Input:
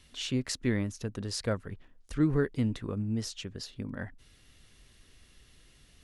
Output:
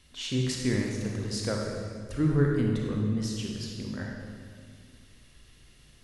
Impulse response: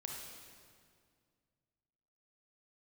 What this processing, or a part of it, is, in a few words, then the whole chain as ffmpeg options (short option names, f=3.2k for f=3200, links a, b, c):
stairwell: -filter_complex "[1:a]atrim=start_sample=2205[a];[0:a][a]afir=irnorm=-1:irlink=0,volume=4dB"